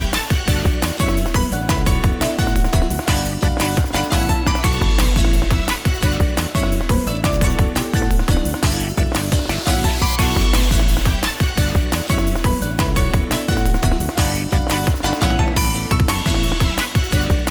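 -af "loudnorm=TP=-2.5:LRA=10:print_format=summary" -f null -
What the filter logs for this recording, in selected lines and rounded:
Input Integrated:    -18.2 LUFS
Input True Peak:      -5.2 dBTP
Input LRA:             0.8 LU
Input Threshold:     -28.2 LUFS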